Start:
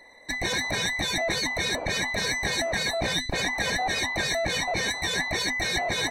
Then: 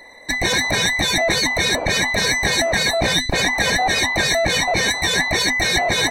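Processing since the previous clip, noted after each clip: treble shelf 11 kHz +3.5 dB; trim +8.5 dB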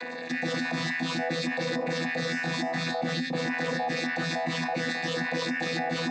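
vocoder on a held chord bare fifth, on E3; feedback comb 260 Hz, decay 0.29 s, harmonics all, mix 70%; level flattener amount 70%; trim -5 dB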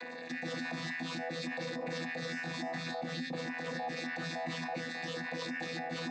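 peak limiter -22 dBFS, peak gain reduction 4.5 dB; trim -7.5 dB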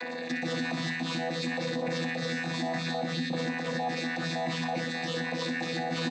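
feedback delay 61 ms, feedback 58%, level -10 dB; in parallel at 0 dB: gain riding 0.5 s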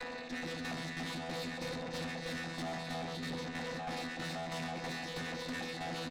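delay 135 ms -5.5 dB; tremolo saw down 3.1 Hz, depth 60%; valve stage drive 36 dB, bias 0.7

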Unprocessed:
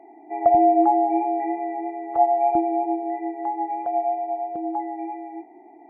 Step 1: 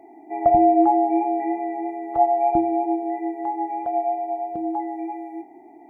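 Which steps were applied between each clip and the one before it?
tone controls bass +10 dB, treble +10 dB; de-hum 74.39 Hz, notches 26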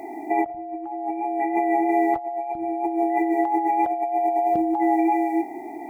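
treble shelf 2 kHz +11 dB; compressor with a negative ratio -29 dBFS, ratio -1; trim +4.5 dB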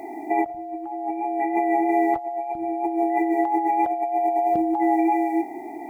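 word length cut 12-bit, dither none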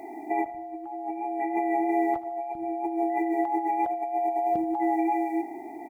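feedback delay 78 ms, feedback 52%, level -17 dB; trim -5 dB

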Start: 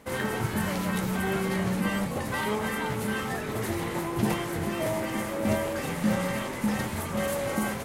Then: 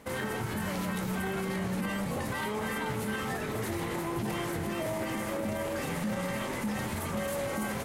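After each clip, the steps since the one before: peak limiter -24.5 dBFS, peak gain reduction 11 dB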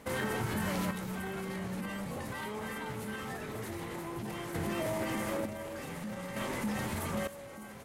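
random-step tremolo 1.1 Hz, depth 80%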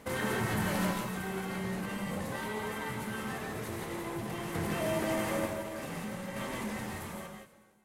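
fade out at the end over 1.91 s; gated-style reverb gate 200 ms rising, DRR 1 dB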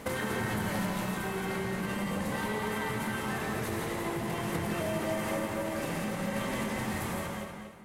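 compression 5:1, threshold -39 dBFS, peak gain reduction 11.5 dB; filtered feedback delay 238 ms, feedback 35%, low-pass 4.6 kHz, level -5.5 dB; trim +8 dB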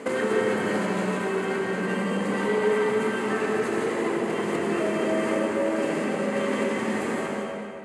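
cabinet simulation 250–8400 Hz, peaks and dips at 250 Hz +7 dB, 420 Hz +9 dB, 840 Hz -3 dB, 3.7 kHz -7 dB, 5.6 kHz -9 dB; algorithmic reverb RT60 2.3 s, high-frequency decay 0.55×, pre-delay 40 ms, DRR 3.5 dB; trim +5 dB

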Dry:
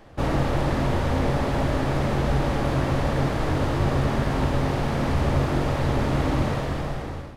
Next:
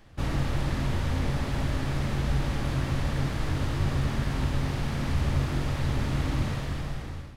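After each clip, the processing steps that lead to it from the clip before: peaking EQ 580 Hz -10.5 dB 2.5 oct; trim -1.5 dB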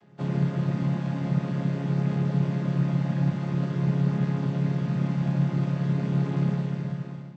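vocoder on a held chord major triad, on C#3; trim +6 dB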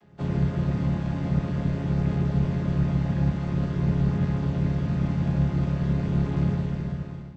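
octave divider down 1 oct, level -6 dB

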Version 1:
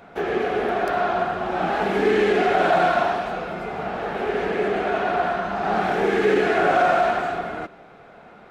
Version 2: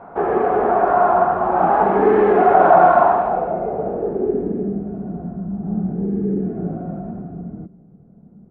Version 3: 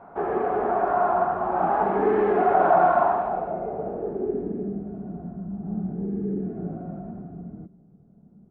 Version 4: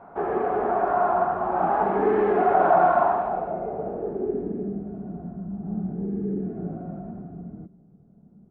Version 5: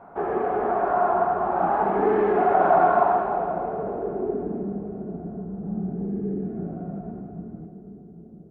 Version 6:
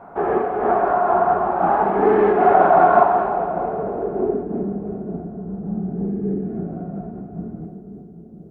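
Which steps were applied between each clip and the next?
low-pass sweep 1 kHz -> 190 Hz, 3.18–4.84 s; trim +3.5 dB
band-stop 500 Hz, Q 16; trim -7 dB
no audible change
two-band feedback delay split 510 Hz, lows 793 ms, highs 301 ms, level -11 dB
random flutter of the level, depth 55%; trim +7 dB

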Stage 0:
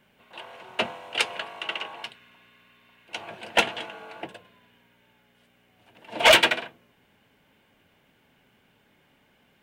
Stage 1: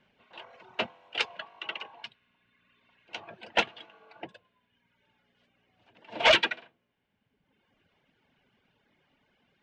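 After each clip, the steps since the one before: reverb removal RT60 1.3 s; low-pass 5.8 kHz 24 dB/octave; trim -4.5 dB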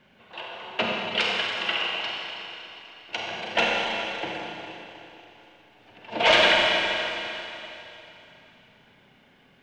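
peak limiter -20 dBFS, peak gain reduction 8 dB; Schroeder reverb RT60 3.2 s, combs from 31 ms, DRR -3.5 dB; trim +7.5 dB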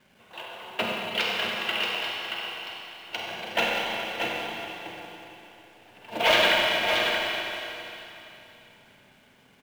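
in parallel at -4.5 dB: companded quantiser 4-bit; on the sum: delay 628 ms -6 dB; trim -6.5 dB

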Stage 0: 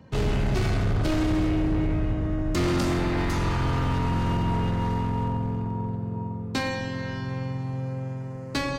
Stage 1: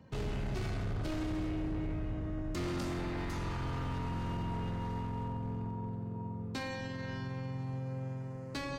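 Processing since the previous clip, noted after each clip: peak limiter -24 dBFS, peak gain reduction 5.5 dB; trim -7 dB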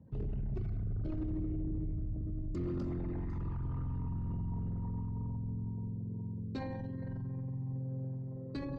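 resonances exaggerated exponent 2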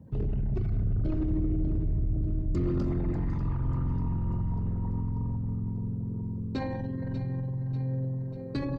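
feedback delay 592 ms, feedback 52%, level -11.5 dB; trim +7.5 dB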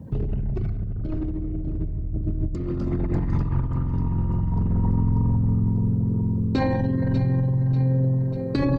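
compressor with a negative ratio -30 dBFS, ratio -0.5; trim +8.5 dB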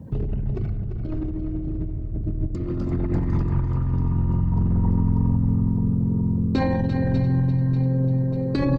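feedback delay 343 ms, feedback 34%, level -9 dB

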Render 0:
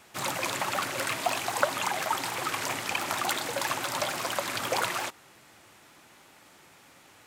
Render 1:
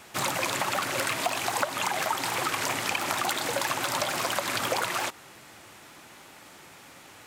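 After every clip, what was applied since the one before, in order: compression 4:1, threshold -31 dBFS, peak gain reduction 11 dB; trim +6 dB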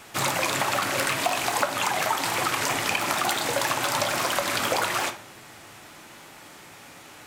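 simulated room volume 64 m³, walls mixed, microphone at 0.32 m; trim +2.5 dB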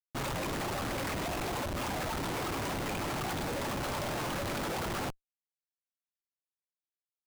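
Schmitt trigger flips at -24 dBFS; trim -7 dB

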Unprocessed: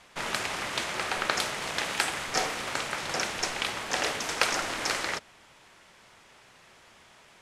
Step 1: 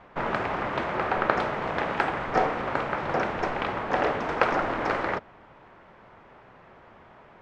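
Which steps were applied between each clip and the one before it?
low-pass 1.2 kHz 12 dB/octave; trim +8.5 dB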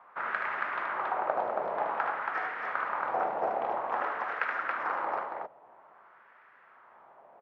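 gain riding 0.5 s; LFO band-pass sine 0.51 Hz 660–1700 Hz; loudspeakers at several distances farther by 26 m -5 dB, 95 m -3 dB; trim -1.5 dB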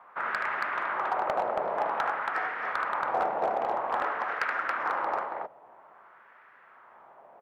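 hard clipper -22 dBFS, distortion -19 dB; trim +2.5 dB

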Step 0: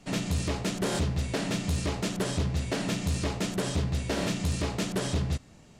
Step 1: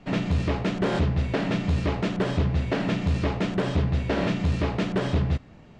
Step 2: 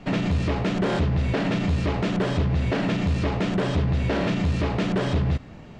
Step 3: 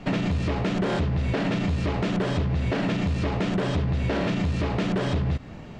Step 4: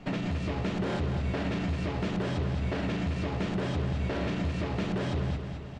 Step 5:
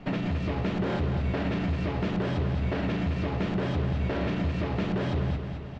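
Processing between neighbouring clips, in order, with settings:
low-pass 2.7 kHz 12 dB/octave; trim +5 dB
peak limiter -23 dBFS, peak gain reduction 6.5 dB; trim +6.5 dB
compression, threshold -24 dBFS, peak gain reduction 5.5 dB; trim +2.5 dB
feedback delay 217 ms, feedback 54%, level -7.5 dB; trim -6.5 dB
distance through air 110 m; trim +2.5 dB

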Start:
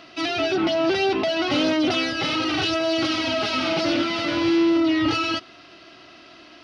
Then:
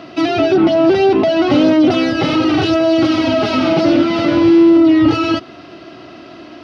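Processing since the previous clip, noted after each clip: high-pass 78 Hz; tilt shelf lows +7 dB, about 1.1 kHz; in parallel at +2.5 dB: compression, threshold -23 dBFS, peak gain reduction 11.5 dB; on the sum: trim +2 dB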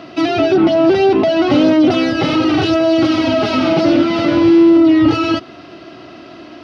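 no audible change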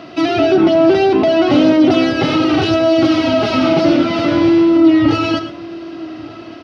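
echo from a far wall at 200 m, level -19 dB; gated-style reverb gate 140 ms rising, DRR 11 dB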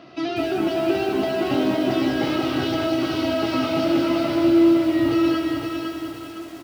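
feedback comb 68 Hz, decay 0.16 s, harmonics all, mix 90%; feedback delay 509 ms, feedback 36%, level -5 dB; bit-crushed delay 197 ms, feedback 55%, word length 6-bit, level -6 dB; trim -5.5 dB

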